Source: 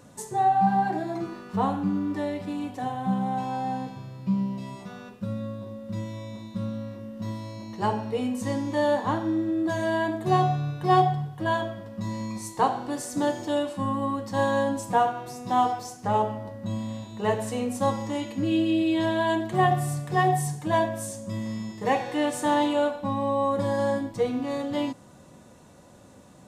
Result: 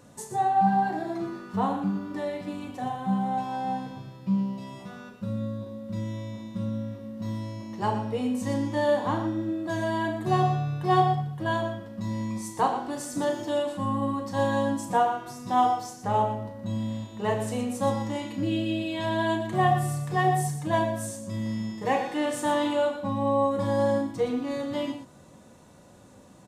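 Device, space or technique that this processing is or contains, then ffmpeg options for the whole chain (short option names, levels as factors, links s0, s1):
slapback doubling: -filter_complex "[0:a]asplit=3[s0][s1][s2];[s1]adelay=36,volume=0.376[s3];[s2]adelay=119,volume=0.316[s4];[s0][s3][s4]amix=inputs=3:normalize=0,volume=0.794"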